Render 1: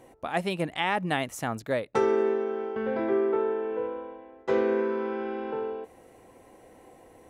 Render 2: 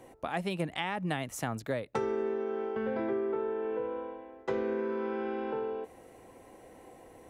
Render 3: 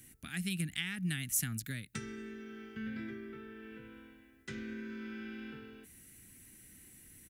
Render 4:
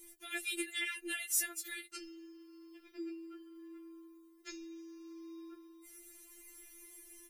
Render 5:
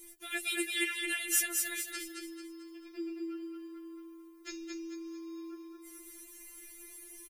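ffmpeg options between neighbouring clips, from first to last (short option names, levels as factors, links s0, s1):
-filter_complex "[0:a]acrossover=split=180[s0][s1];[s1]acompressor=threshold=0.0282:ratio=4[s2];[s0][s2]amix=inputs=2:normalize=0"
-af "firequalizer=gain_entry='entry(190,0);entry(520,-29);entry(920,-28);entry(1500,-4);entry(2200,-1);entry(11000,14)':delay=0.05:min_phase=1"
-af "afftfilt=real='re*4*eq(mod(b,16),0)':imag='im*4*eq(mod(b,16),0)':win_size=2048:overlap=0.75,volume=1.68"
-af "aecho=1:1:221|442|663|884|1105:0.631|0.246|0.096|0.0374|0.0146,volume=1.5"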